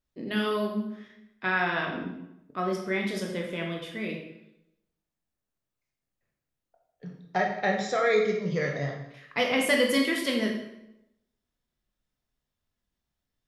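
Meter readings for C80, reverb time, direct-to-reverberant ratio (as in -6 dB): 7.5 dB, 0.85 s, 0.5 dB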